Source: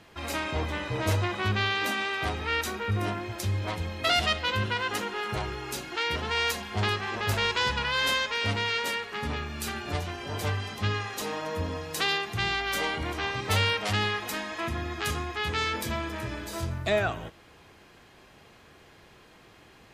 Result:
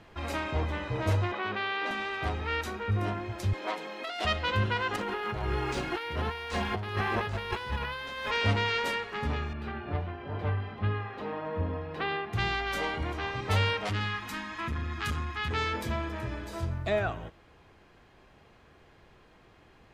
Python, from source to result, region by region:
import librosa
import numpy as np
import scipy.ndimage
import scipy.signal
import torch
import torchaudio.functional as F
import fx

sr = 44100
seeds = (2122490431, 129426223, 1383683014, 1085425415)

y = fx.chain(x, sr, fx.bandpass_edges(low_hz=330.0, high_hz=3900.0),
    fx.env_flatten(amount_pct=50), at=(1.32, 1.91))
y = fx.chain(y, sr, fx.bessel_highpass(hz=380.0, order=8),
    fx.over_compress(threshold_db=-31.0, ratio=-1.0), at=(3.53, 4.25))
y = fx.chain(y, sr, fx.over_compress(threshold_db=-35.0, ratio=-1.0),
    fx.resample_linear(factor=3), at=(4.96, 8.31))
y = fx.chain(y, sr, fx.highpass(hz=61.0, slope=12),
    fx.air_absorb(metres=400.0), at=(9.53, 12.33))
y = fx.chain(y, sr, fx.band_shelf(hz=530.0, db=-11.0, octaves=1.3),
    fx.transformer_sat(knee_hz=600.0), at=(13.89, 15.51))
y = fx.tilt_eq(y, sr, slope=-3.5)
y = fx.rider(y, sr, range_db=10, speed_s=2.0)
y = fx.low_shelf(y, sr, hz=430.0, db=-12.0)